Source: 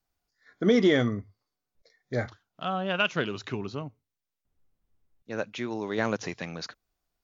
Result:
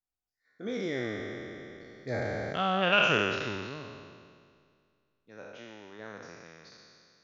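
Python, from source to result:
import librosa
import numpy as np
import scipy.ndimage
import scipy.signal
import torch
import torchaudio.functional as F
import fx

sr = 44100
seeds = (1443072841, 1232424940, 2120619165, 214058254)

y = fx.spec_trails(x, sr, decay_s=2.48)
y = fx.doppler_pass(y, sr, speed_mps=10, closest_m=3.2, pass_at_s=2.78)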